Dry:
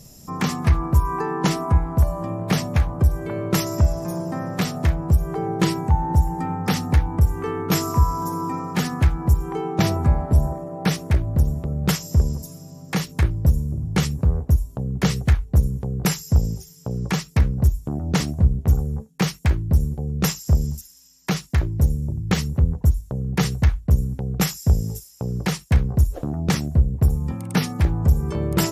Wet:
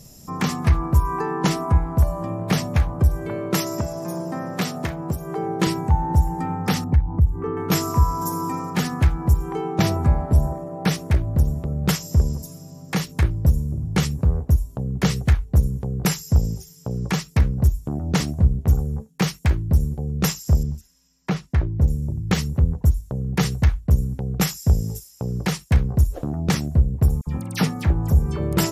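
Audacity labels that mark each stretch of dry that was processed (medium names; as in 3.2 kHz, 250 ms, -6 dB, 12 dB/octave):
3.350000	5.670000	high-pass 160 Hz
6.840000	7.570000	resonances exaggerated exponent 1.5
8.210000	8.700000	treble shelf 4.8 kHz +9 dB
20.630000	21.880000	low-pass 1.7 kHz 6 dB/octave
27.210000	28.390000	phase dispersion lows, late by 58 ms, half as late at 1.8 kHz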